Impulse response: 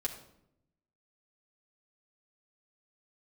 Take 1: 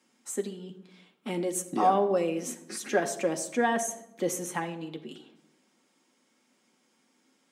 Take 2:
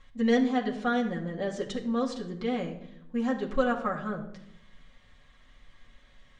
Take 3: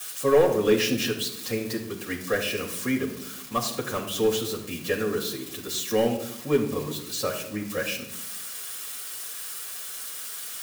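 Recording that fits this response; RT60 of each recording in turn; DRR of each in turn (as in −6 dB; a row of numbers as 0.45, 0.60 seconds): 2; 0.80, 0.80, 0.80 seconds; 3.0, −2.5, −8.5 decibels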